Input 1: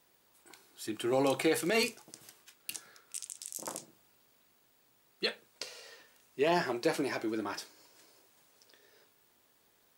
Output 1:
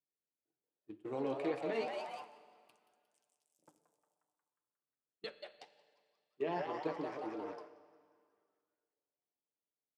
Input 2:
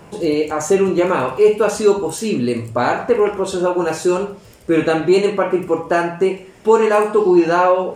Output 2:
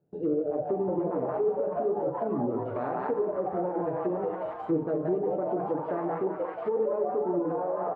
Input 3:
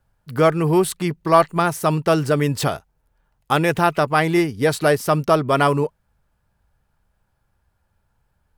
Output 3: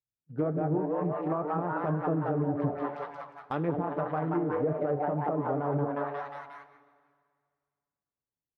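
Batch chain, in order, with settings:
adaptive Wiener filter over 41 samples
high-pass filter 150 Hz 6 dB per octave
echo with shifted repeats 179 ms, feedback 60%, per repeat +140 Hz, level −5 dB
noise gate −38 dBFS, range −20 dB
high-shelf EQ 2,400 Hz −12 dB
comb filter 6.8 ms, depth 33%
brickwall limiter −12 dBFS
flanger 1.9 Hz, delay 5.7 ms, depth 9.5 ms, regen +63%
treble cut that deepens with the level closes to 700 Hz, closed at −20.5 dBFS
four-comb reverb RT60 2 s, DRR 14 dB
level −3.5 dB

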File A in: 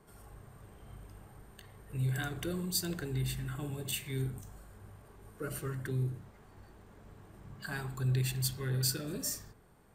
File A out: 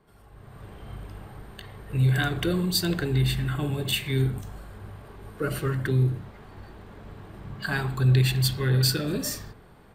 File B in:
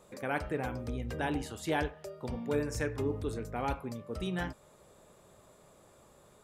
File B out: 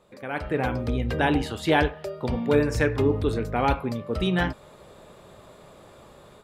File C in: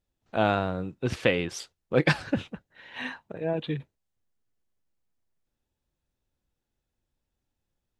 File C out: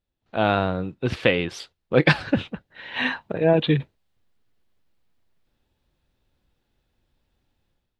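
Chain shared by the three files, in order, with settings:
high shelf with overshoot 5,100 Hz −6.5 dB, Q 1.5
automatic gain control gain up to 12 dB
level −1 dB

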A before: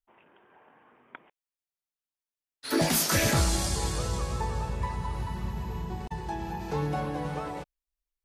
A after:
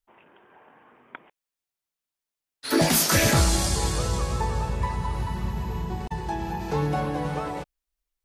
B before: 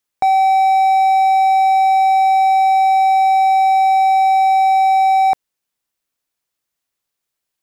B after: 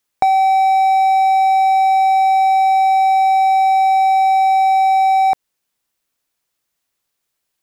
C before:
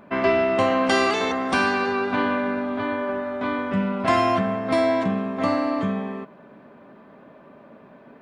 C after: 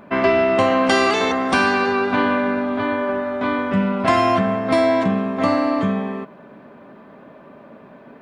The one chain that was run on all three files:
downward compressor, threshold −15 dBFS
level +4.5 dB

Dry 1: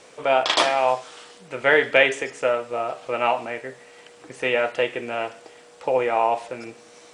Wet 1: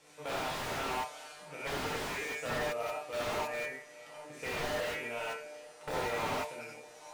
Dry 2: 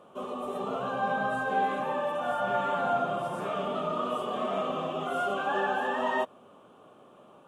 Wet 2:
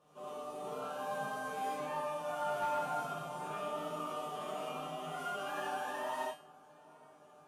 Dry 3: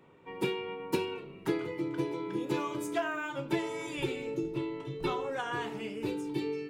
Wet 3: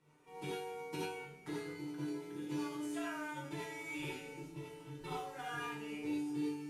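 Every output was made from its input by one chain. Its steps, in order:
variable-slope delta modulation 64 kbit/s
parametric band 370 Hz −3.5 dB 2 octaves
tuned comb filter 150 Hz, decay 0.42 s, harmonics all, mix 90%
delay with a low-pass on its return 819 ms, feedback 64%, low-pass 1,400 Hz, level −22.5 dB
wrap-around overflow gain 30 dB
reverb whose tail is shaped and stops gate 110 ms rising, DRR −4 dB
slew-rate limiting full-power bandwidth 36 Hz

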